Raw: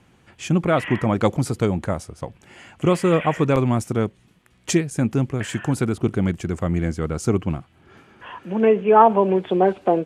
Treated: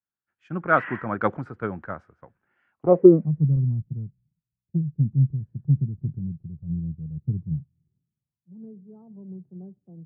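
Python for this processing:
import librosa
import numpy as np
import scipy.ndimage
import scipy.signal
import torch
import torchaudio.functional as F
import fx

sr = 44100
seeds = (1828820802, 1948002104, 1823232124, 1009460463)

y = fx.cvsd(x, sr, bps=16000, at=(5.96, 7.16))
y = fx.filter_sweep_lowpass(y, sr, from_hz=1500.0, to_hz=150.0, start_s=2.7, end_s=3.29, q=4.5)
y = fx.band_widen(y, sr, depth_pct=100)
y = y * librosa.db_to_amplitude(-10.5)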